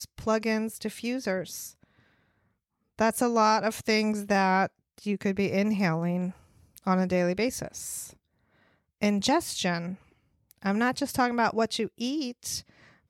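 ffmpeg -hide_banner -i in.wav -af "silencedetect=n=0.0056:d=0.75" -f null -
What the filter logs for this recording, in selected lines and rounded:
silence_start: 1.83
silence_end: 2.99 | silence_duration: 1.15
silence_start: 8.13
silence_end: 9.02 | silence_duration: 0.88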